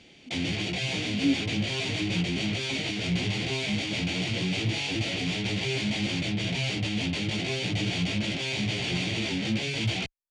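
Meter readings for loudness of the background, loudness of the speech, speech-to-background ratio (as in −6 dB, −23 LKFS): −28.5 LKFS, −32.5 LKFS, −4.0 dB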